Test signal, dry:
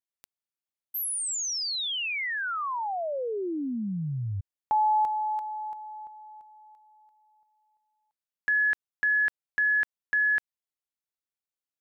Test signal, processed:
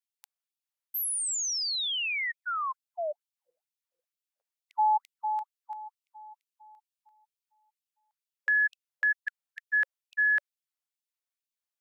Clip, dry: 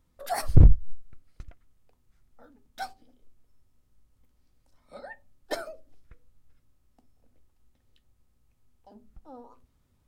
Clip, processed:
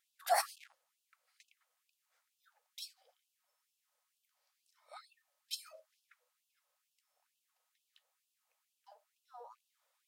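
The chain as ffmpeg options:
ffmpeg -i in.wav -af "afftfilt=real='re*gte(b*sr/1024,460*pow(2600/460,0.5+0.5*sin(2*PI*2.2*pts/sr)))':imag='im*gte(b*sr/1024,460*pow(2600/460,0.5+0.5*sin(2*PI*2.2*pts/sr)))':win_size=1024:overlap=0.75" out.wav

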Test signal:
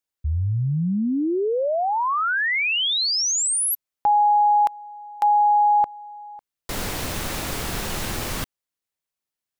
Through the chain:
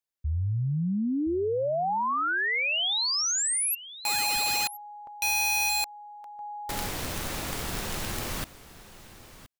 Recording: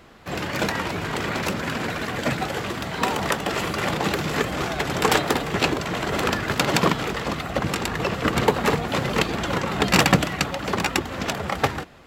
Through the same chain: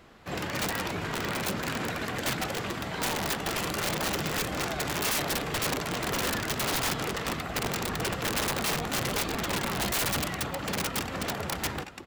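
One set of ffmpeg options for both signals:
ffmpeg -i in.wav -af "aecho=1:1:1021:0.15,aeval=exprs='(mod(7.5*val(0)+1,2)-1)/7.5':channel_layout=same,volume=-5dB" out.wav

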